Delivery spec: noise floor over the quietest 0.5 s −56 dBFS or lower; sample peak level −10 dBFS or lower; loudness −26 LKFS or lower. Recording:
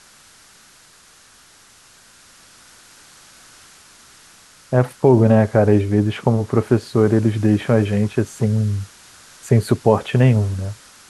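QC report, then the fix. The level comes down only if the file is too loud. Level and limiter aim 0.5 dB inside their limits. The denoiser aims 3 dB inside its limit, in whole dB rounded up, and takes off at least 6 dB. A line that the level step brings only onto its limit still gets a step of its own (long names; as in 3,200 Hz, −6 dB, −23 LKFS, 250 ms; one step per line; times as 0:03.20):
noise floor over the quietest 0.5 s −49 dBFS: out of spec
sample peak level −1.5 dBFS: out of spec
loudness −17.5 LKFS: out of spec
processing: level −9 dB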